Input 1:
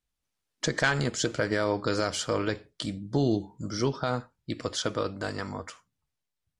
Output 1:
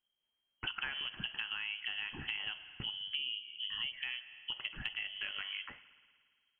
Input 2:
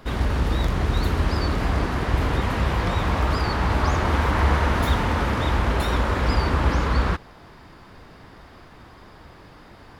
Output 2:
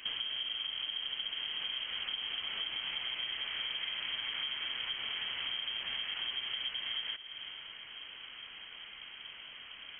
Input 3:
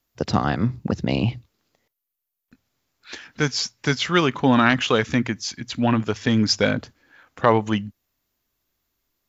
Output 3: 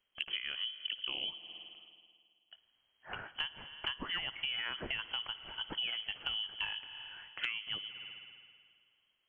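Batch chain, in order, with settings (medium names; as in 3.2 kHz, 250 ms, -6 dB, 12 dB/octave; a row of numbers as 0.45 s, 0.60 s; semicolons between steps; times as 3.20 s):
spring tank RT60 1.9 s, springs 54 ms, chirp 30 ms, DRR 17 dB; frequency inversion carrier 3.2 kHz; compression 8:1, threshold -32 dBFS; trim -3.5 dB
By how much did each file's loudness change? -9.0 LU, -13.5 LU, -16.5 LU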